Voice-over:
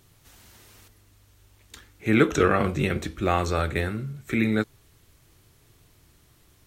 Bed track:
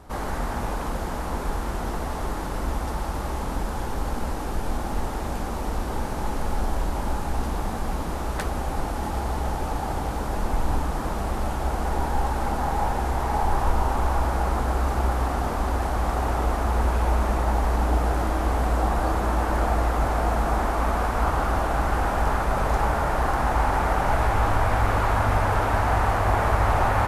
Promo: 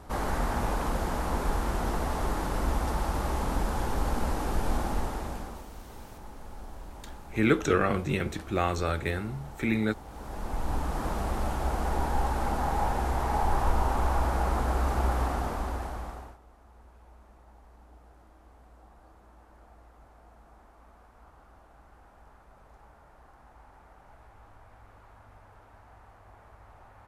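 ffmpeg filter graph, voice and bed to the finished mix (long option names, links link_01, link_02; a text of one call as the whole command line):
ffmpeg -i stem1.wav -i stem2.wav -filter_complex "[0:a]adelay=5300,volume=-4dB[link_01];[1:a]volume=13.5dB,afade=type=out:start_time=4.78:duration=0.9:silence=0.141254,afade=type=in:start_time=10.06:duration=0.99:silence=0.188365,afade=type=out:start_time=15.2:duration=1.18:silence=0.0354813[link_02];[link_01][link_02]amix=inputs=2:normalize=0" out.wav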